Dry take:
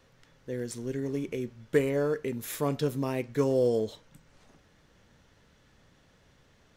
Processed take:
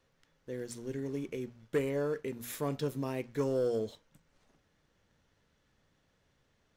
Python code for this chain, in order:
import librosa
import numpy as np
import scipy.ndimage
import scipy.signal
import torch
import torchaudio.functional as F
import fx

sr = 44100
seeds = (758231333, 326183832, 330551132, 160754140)

y = fx.hum_notches(x, sr, base_hz=60, count=4)
y = fx.leveller(y, sr, passes=1)
y = y * 10.0 ** (-8.5 / 20.0)